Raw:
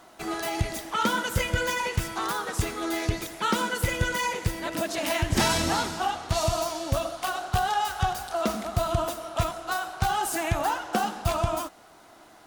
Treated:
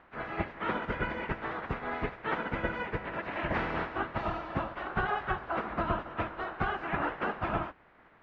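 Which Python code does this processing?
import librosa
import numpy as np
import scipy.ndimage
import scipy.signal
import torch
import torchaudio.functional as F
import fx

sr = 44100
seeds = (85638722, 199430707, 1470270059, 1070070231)

y = fx.spec_clip(x, sr, under_db=20)
y = scipy.signal.sosfilt(scipy.signal.butter(4, 2000.0, 'lowpass', fs=sr, output='sos'), y)
y = fx.stretch_vocoder_free(y, sr, factor=0.66)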